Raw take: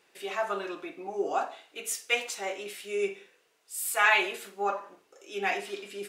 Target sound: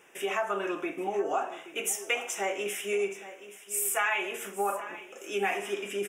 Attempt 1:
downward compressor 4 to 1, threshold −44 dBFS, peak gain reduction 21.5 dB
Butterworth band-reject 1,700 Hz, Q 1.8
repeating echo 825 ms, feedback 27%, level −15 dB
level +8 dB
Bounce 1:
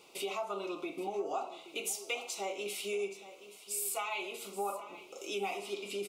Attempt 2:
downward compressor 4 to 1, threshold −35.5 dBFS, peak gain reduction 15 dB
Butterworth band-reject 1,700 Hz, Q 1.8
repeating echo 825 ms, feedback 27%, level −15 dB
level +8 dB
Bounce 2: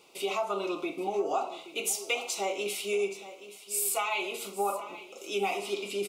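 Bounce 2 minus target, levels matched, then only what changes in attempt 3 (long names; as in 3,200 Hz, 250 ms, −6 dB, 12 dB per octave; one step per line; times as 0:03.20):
2,000 Hz band −3.5 dB
change: Butterworth band-reject 4,300 Hz, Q 1.8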